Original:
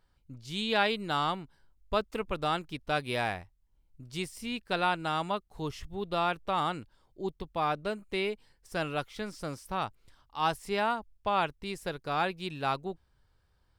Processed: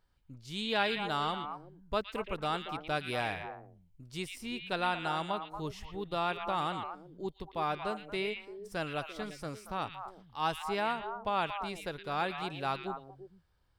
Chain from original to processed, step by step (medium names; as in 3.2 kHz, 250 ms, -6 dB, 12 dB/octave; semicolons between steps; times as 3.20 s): repeats whose band climbs or falls 115 ms, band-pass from 2.6 kHz, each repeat -1.4 oct, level -3 dB; trim -3.5 dB